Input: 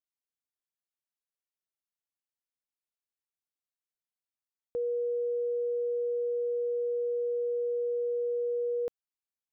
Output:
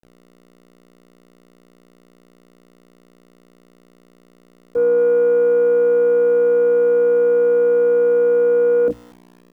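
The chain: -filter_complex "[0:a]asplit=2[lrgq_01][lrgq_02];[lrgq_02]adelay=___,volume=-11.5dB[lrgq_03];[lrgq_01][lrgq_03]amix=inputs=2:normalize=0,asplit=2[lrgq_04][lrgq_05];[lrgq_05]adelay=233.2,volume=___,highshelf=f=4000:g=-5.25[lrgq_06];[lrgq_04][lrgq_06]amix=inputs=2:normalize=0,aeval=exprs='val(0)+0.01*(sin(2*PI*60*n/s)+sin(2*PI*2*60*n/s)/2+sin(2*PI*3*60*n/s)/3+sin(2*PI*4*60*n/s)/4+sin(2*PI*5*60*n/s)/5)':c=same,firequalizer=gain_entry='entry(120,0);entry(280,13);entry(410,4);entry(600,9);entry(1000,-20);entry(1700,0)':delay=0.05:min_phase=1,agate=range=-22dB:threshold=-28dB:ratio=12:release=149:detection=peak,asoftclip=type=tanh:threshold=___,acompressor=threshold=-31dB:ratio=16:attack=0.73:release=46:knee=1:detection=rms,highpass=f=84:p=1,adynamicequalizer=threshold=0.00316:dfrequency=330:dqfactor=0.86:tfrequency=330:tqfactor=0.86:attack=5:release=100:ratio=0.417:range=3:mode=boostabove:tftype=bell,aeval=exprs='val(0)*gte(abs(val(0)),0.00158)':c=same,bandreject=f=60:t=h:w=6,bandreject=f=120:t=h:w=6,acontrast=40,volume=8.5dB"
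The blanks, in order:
27, -20dB, -21.5dB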